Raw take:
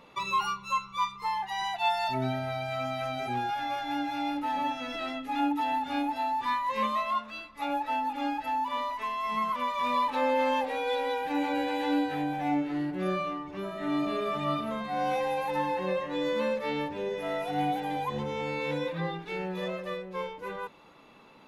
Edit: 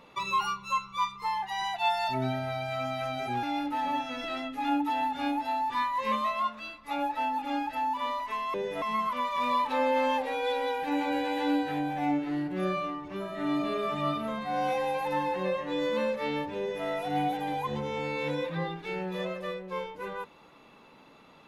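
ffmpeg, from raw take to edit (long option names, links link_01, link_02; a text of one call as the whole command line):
ffmpeg -i in.wav -filter_complex "[0:a]asplit=4[link_01][link_02][link_03][link_04];[link_01]atrim=end=3.432[link_05];[link_02]atrim=start=4.138:end=9.252[link_06];[link_03]atrim=start=17.008:end=17.292[link_07];[link_04]atrim=start=9.248[link_08];[link_05][link_06]acrossfade=duration=0.004:curve1=hsin:curve2=hsin[link_09];[link_09][link_07]acrossfade=duration=0.004:curve1=hsin:curve2=hsin[link_10];[link_10][link_08]acrossfade=duration=0.004:curve1=hsin:curve2=hsin" out.wav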